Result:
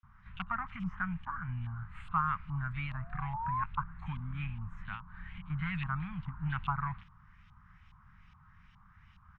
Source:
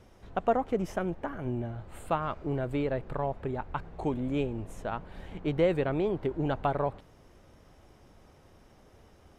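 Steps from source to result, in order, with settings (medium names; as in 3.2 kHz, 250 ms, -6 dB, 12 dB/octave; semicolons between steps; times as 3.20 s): bands offset in time highs, lows 30 ms, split 3.1 kHz; saturation -18 dBFS, distortion -21 dB; 2.56–3.64 s: painted sound rise 450–1100 Hz -33 dBFS; 4.94–5.50 s: compression 10:1, threshold -38 dBFS, peak gain reduction 8.5 dB; LFO low-pass saw up 2.4 Hz 980–3100 Hz; elliptic band-stop 180–1100 Hz, stop band 70 dB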